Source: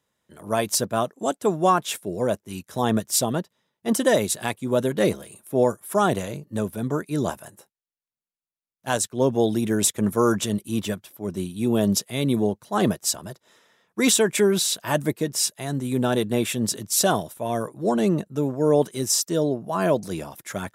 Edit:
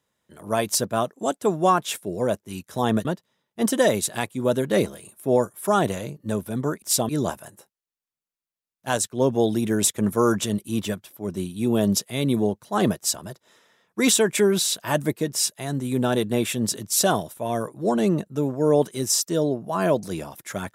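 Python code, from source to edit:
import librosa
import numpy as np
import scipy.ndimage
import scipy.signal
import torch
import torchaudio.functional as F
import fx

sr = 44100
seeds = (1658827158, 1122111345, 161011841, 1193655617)

y = fx.edit(x, sr, fx.move(start_s=3.05, length_s=0.27, to_s=7.09), tone=tone)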